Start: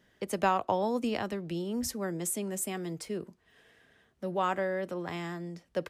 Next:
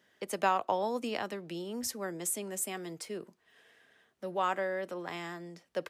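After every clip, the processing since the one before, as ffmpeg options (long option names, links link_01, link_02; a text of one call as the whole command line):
ffmpeg -i in.wav -af "highpass=frequency=430:poles=1" out.wav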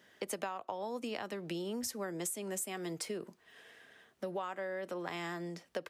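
ffmpeg -i in.wav -af "acompressor=threshold=-40dB:ratio=16,volume=5dB" out.wav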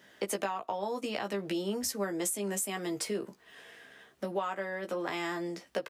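ffmpeg -i in.wav -filter_complex "[0:a]asplit=2[link_01][link_02];[link_02]adelay=15,volume=-4.5dB[link_03];[link_01][link_03]amix=inputs=2:normalize=0,volume=4dB" out.wav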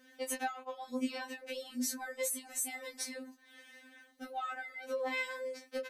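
ffmpeg -i in.wav -af "afftfilt=real='re*3.46*eq(mod(b,12),0)':imag='im*3.46*eq(mod(b,12),0)':win_size=2048:overlap=0.75" out.wav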